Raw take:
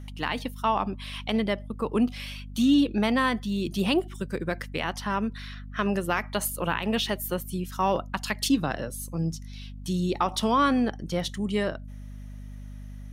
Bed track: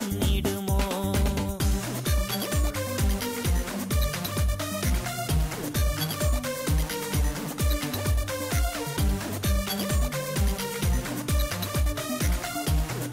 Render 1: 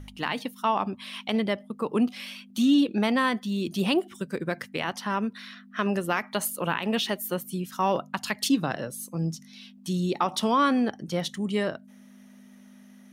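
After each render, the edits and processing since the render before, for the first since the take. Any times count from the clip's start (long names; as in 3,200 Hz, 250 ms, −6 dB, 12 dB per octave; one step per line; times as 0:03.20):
hum removal 50 Hz, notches 3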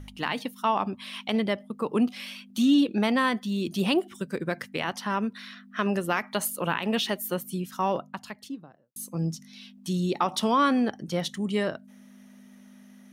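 0:07.51–0:08.96: fade out and dull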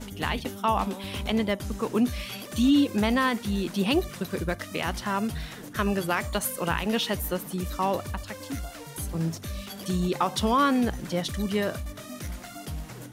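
mix in bed track −10.5 dB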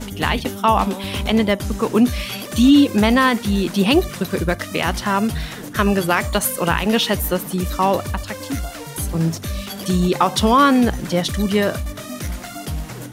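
level +9 dB
brickwall limiter −3 dBFS, peak gain reduction 1.5 dB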